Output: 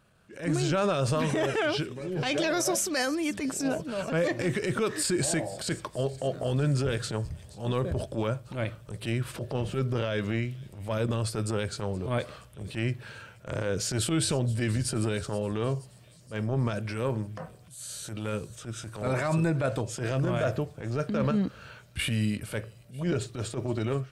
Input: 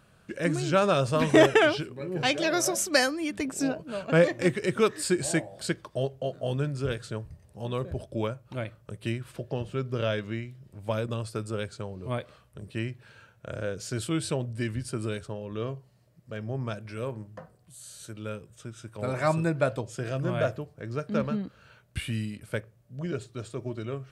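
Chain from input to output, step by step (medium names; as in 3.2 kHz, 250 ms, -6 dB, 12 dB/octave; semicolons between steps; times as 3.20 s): level rider gain up to 11.5 dB; transient shaper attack -12 dB, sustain +2 dB; peak limiter -14.5 dBFS, peak gain reduction 10.5 dB; feedback echo behind a high-pass 474 ms, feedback 60%, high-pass 3.2 kHz, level -18 dB; trim -4 dB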